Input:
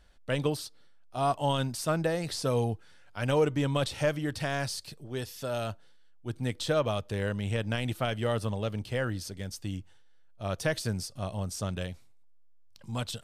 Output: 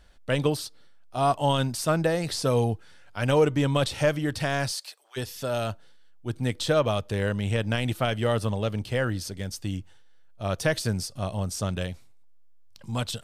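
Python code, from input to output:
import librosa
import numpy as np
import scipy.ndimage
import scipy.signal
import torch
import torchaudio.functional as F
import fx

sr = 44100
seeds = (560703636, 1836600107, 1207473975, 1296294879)

y = fx.highpass(x, sr, hz=fx.line((4.71, 430.0), (5.16, 1100.0)), slope=24, at=(4.71, 5.16), fade=0.02)
y = F.gain(torch.from_numpy(y), 4.5).numpy()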